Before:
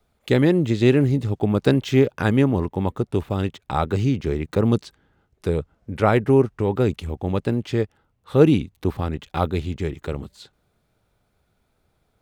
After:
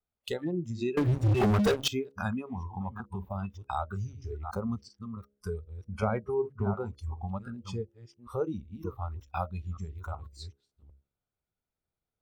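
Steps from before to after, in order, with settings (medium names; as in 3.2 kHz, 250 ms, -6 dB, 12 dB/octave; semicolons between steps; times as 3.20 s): chunks repeated in reverse 376 ms, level -10 dB; compression 3:1, threshold -27 dBFS, peak gain reduction 14 dB; de-hum 68.69 Hz, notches 9; spectral noise reduction 22 dB; 0.97–1.88 s: waveshaping leveller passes 5; 6.02–6.74 s: peaking EQ 140 Hz +10.5 dB 2 oct; trim -2 dB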